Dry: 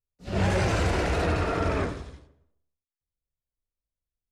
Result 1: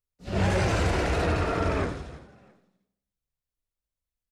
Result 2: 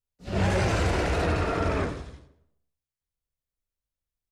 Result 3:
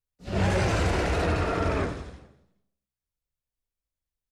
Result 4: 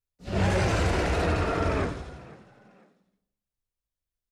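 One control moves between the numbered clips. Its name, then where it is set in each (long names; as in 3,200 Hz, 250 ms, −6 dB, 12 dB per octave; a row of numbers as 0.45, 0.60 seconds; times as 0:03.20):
echo with shifted repeats, delay time: 333, 108, 210, 497 milliseconds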